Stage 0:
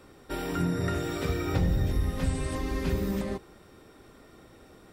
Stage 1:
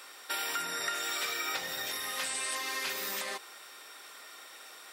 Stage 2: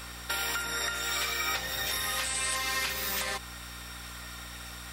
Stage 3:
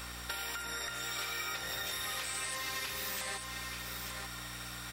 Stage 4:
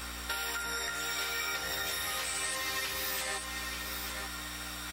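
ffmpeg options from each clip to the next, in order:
-af "highpass=750,tiltshelf=f=1.2k:g=-7,acompressor=threshold=-41dB:ratio=2.5,volume=7.5dB"
-af "asubboost=boost=10:cutoff=100,alimiter=level_in=1.5dB:limit=-24dB:level=0:latency=1:release=492,volume=-1.5dB,aeval=exprs='val(0)+0.00251*(sin(2*PI*60*n/s)+sin(2*PI*2*60*n/s)/2+sin(2*PI*3*60*n/s)/3+sin(2*PI*4*60*n/s)/4+sin(2*PI*5*60*n/s)/5)':c=same,volume=6dB"
-af "aeval=exprs='sgn(val(0))*max(abs(val(0))-0.00133,0)':c=same,acompressor=threshold=-37dB:ratio=4,aecho=1:1:890:0.531"
-filter_complex "[0:a]asplit=2[a][b];[b]adelay=13,volume=-4dB[c];[a][c]amix=inputs=2:normalize=0,volume=2dB"

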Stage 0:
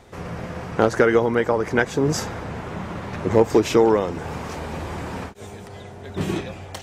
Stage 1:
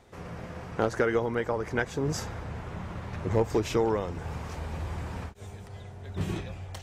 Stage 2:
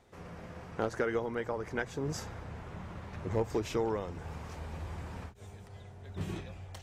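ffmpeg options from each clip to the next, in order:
-af "asubboost=boost=3.5:cutoff=130,volume=-8.5dB"
-af "bandreject=f=60:t=h:w=6,bandreject=f=120:t=h:w=6,volume=-6dB"

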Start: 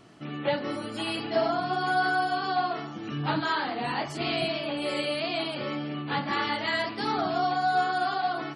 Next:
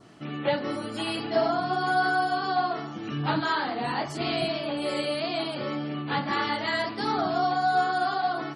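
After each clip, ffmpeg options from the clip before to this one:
-af "adynamicequalizer=threshold=0.00447:dfrequency=2600:dqfactor=1.9:tfrequency=2600:tqfactor=1.9:attack=5:release=100:ratio=0.375:range=2.5:mode=cutabove:tftype=bell,volume=1.5dB"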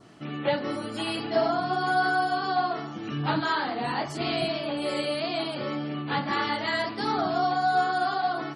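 -af anull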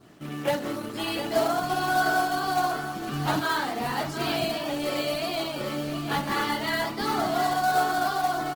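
-af "acrusher=bits=3:mode=log:mix=0:aa=0.000001,aecho=1:1:710:0.299" -ar 48000 -c:a libopus -b:a 16k

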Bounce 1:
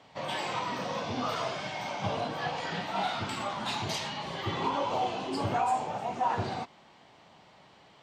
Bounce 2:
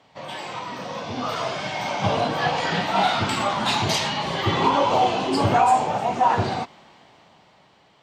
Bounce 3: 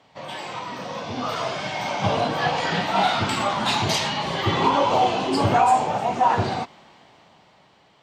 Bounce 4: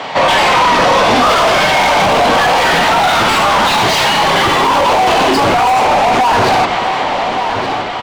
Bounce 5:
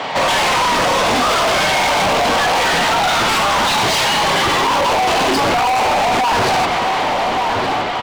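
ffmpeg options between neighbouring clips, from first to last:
-af "dynaudnorm=f=350:g=9:m=11dB"
-af anull
-filter_complex "[0:a]asplit=2[a][b];[b]highpass=f=720:p=1,volume=35dB,asoftclip=type=tanh:threshold=-6.5dB[c];[a][c]amix=inputs=2:normalize=0,lowpass=f=2.4k:p=1,volume=-6dB,asplit=2[d][e];[e]adelay=1172,lowpass=f=4.4k:p=1,volume=-13.5dB,asplit=2[f][g];[g]adelay=1172,lowpass=f=4.4k:p=1,volume=0.52,asplit=2[h][i];[i]adelay=1172,lowpass=f=4.4k:p=1,volume=0.52,asplit=2[j][k];[k]adelay=1172,lowpass=f=4.4k:p=1,volume=0.52,asplit=2[l][m];[m]adelay=1172,lowpass=f=4.4k:p=1,volume=0.52[n];[d][f][h][j][l][n]amix=inputs=6:normalize=0,alimiter=limit=-14.5dB:level=0:latency=1:release=109,volume=8.5dB"
-af "volume=14dB,asoftclip=hard,volume=-14dB"

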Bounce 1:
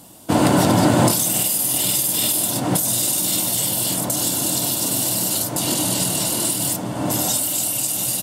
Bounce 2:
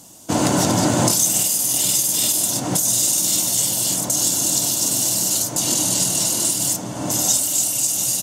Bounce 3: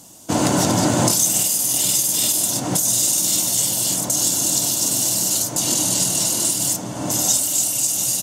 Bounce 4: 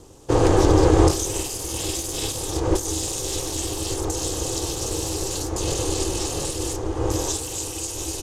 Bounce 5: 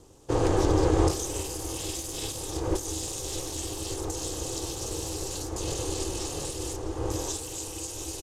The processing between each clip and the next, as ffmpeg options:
-af "equalizer=f=6.4k:w=2:g=13,volume=-3dB"
-af anull
-af "aemphasis=mode=reproduction:type=bsi,aeval=exprs='val(0)*sin(2*PI*200*n/s)':c=same,volume=1dB"
-af "aecho=1:1:656:0.15,volume=-7dB"

